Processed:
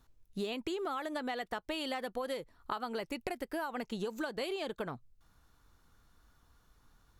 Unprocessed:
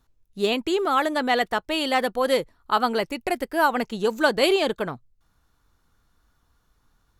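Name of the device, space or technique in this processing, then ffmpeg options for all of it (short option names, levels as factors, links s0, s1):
serial compression, leveller first: -af "acompressor=threshold=0.0631:ratio=3,acompressor=threshold=0.0178:ratio=5"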